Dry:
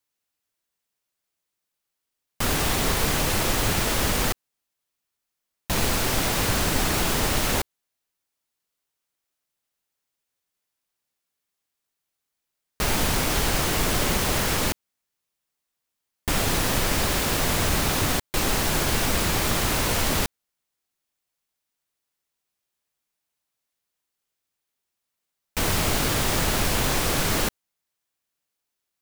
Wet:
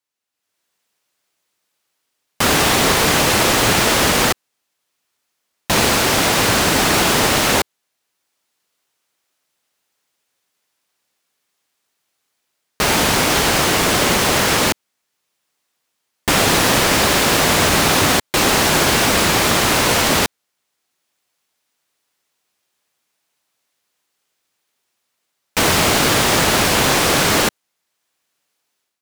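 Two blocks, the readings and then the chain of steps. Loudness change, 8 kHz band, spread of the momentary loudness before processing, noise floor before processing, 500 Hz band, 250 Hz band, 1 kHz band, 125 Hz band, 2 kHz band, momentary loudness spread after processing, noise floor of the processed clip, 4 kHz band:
+9.0 dB, +8.5 dB, 5 LU, −83 dBFS, +10.0 dB, +8.5 dB, +11.0 dB, +4.5 dB, +11.0 dB, 5 LU, −75 dBFS, +10.5 dB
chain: high-pass filter 210 Hz 6 dB per octave
high-shelf EQ 11,000 Hz −8 dB
automatic gain control gain up to 13 dB

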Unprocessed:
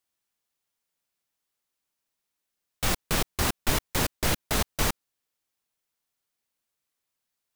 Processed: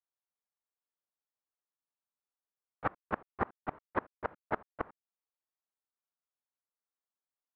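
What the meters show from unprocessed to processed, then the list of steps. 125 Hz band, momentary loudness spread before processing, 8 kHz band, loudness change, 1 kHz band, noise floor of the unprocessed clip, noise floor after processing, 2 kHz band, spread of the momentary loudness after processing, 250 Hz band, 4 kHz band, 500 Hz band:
−17.0 dB, 3 LU, below −40 dB, −12.0 dB, −4.5 dB, −84 dBFS, below −85 dBFS, −10.5 dB, 7 LU, −10.5 dB, below −30 dB, −6.5 dB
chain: high-pass filter 590 Hz 6 dB per octave
noise gate −28 dBFS, range −18 dB
low-pass filter 1,400 Hz 24 dB per octave
gate with flip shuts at −28 dBFS, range −31 dB
level +9.5 dB

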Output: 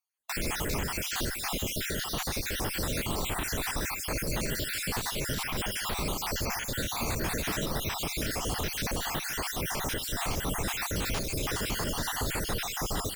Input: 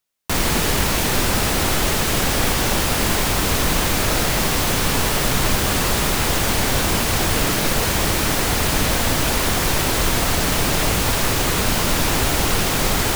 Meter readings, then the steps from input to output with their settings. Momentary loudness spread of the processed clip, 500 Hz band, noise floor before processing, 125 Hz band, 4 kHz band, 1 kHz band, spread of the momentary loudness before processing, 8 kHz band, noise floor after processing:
1 LU, −13.0 dB, −20 dBFS, −13.0 dB, −12.5 dB, −13.5 dB, 0 LU, −13.0 dB, −37 dBFS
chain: time-frequency cells dropped at random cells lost 57%
brickwall limiter −12.5 dBFS, peak gain reduction 6 dB
on a send: single-tap delay 152 ms −14.5 dB
on the sum: asymmetric clip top −17 dBFS, bottom −13 dBFS
level −8 dB

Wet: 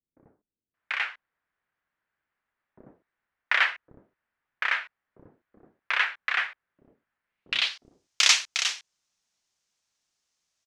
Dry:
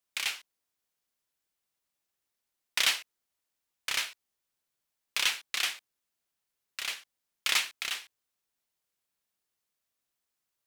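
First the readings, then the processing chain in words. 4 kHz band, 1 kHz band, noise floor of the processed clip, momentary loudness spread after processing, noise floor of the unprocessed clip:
+3.5 dB, +8.5 dB, below −85 dBFS, 14 LU, −85 dBFS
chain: low-pass filter sweep 1,700 Hz → 6,200 Hz, 0:06.49–0:07.14
multiband delay without the direct sound lows, highs 740 ms, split 390 Hz
level +5 dB

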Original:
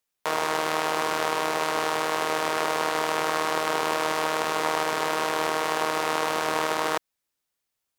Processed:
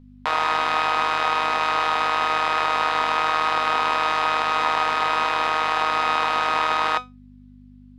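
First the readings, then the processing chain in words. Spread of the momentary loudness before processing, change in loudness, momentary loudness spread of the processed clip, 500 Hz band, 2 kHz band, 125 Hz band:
1 LU, +4.5 dB, 1 LU, −2.5 dB, +5.0 dB, −1.0 dB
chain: flat-topped bell 1,800 Hz +10 dB 3 octaves
in parallel at −3 dB: brickwall limiter −8 dBFS, peak gain reduction 7.5 dB
on the sum: hum with harmonics 50 Hz, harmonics 5, −40 dBFS −3 dB per octave
high-frequency loss of the air 56 metres
tuned comb filter 250 Hz, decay 0.2 s, harmonics all, mix 70%

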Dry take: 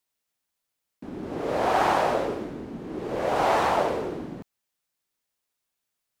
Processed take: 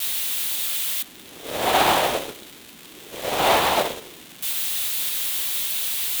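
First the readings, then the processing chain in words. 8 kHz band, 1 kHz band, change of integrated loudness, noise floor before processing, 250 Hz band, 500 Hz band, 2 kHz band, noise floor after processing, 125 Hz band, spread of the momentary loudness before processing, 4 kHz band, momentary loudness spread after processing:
+20.5 dB, +2.0 dB, +4.0 dB, −83 dBFS, −2.0 dB, +0.5 dB, +6.0 dB, −45 dBFS, −1.0 dB, 17 LU, +15.5 dB, 19 LU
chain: spike at every zero crossing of −15 dBFS
drawn EQ curve 1,500 Hz 0 dB, 3,600 Hz +8 dB, 5,200 Hz −5 dB
pitch vibrato 0.88 Hz 13 cents
in parallel at −3.5 dB: bit reduction 4 bits
on the sum: expander for the loud parts 2.5 to 1, over −25 dBFS

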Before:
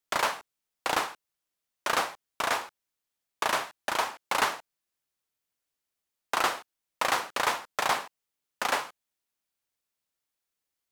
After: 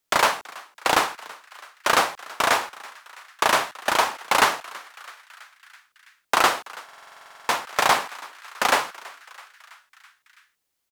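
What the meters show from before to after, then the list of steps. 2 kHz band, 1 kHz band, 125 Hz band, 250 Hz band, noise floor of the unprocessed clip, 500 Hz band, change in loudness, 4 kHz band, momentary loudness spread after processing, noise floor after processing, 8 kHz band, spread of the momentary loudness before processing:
+7.5 dB, +7.5 dB, +7.5 dB, +7.5 dB, below −85 dBFS, +7.5 dB, +7.5 dB, +7.5 dB, 21 LU, −78 dBFS, +7.5 dB, 9 LU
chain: echo with shifted repeats 329 ms, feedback 64%, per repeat +140 Hz, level −21 dB
buffer that repeats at 0:06.84, samples 2,048, times 13
level +8 dB

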